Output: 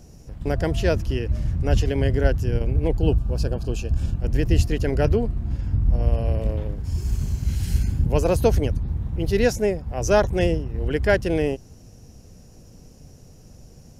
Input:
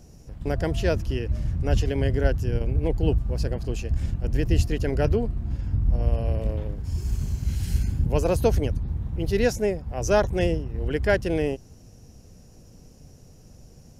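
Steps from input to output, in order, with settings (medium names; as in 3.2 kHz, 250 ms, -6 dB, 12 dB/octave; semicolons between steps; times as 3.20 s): 2.97–4.17 s: Butterworth band-stop 2 kHz, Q 3.5; trim +2.5 dB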